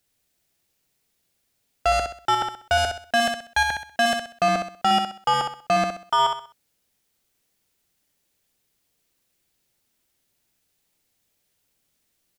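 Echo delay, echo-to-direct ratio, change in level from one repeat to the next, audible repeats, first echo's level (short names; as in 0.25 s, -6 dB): 64 ms, -5.5 dB, -9.5 dB, 4, -6.0 dB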